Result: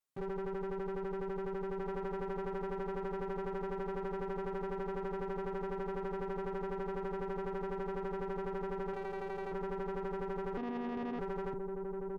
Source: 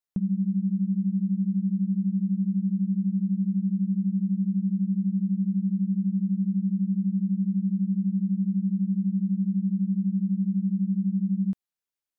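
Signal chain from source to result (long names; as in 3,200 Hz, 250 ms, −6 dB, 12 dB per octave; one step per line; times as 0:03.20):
lower of the sound and its delayed copy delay 7.4 ms
transient designer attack −11 dB, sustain +3 dB
0:08.93–0:09.52: low-shelf EQ 220 Hz −10.5 dB
0:10.57–0:11.19: one-pitch LPC vocoder at 8 kHz 240 Hz
soft clipping −26 dBFS, distortion −20 dB
low-shelf EQ 95 Hz −6.5 dB
harmonic generator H 6 −17 dB, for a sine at −26 dBFS
comb filter 7.3 ms, depth 49%
slap from a distant wall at 280 metres, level −7 dB
brickwall limiter −33 dBFS, peak gain reduction 8 dB
level +1 dB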